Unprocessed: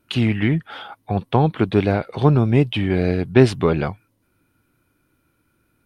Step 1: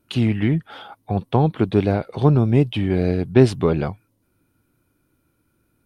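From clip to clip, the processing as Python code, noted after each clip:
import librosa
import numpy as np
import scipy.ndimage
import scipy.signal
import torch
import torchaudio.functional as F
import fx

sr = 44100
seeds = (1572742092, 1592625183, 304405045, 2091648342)

y = fx.peak_eq(x, sr, hz=2000.0, db=-5.5, octaves=2.1)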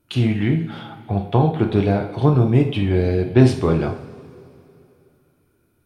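y = fx.rev_double_slope(x, sr, seeds[0], early_s=0.49, late_s=2.9, knee_db=-18, drr_db=2.5)
y = F.gain(torch.from_numpy(y), -1.0).numpy()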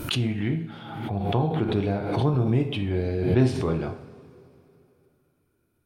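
y = fx.pre_swell(x, sr, db_per_s=47.0)
y = F.gain(torch.from_numpy(y), -8.0).numpy()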